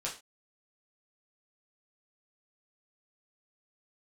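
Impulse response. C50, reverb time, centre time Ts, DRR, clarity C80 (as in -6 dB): 9.5 dB, no single decay rate, 21 ms, -4.5 dB, 16.0 dB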